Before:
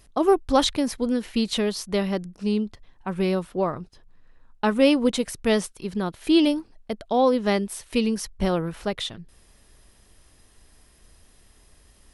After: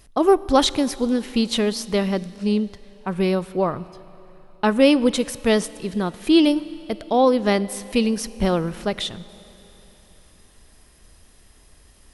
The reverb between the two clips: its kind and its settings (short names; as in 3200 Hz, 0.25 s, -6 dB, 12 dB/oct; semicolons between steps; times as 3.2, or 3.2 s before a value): Schroeder reverb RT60 3.5 s, combs from 27 ms, DRR 17.5 dB; gain +3 dB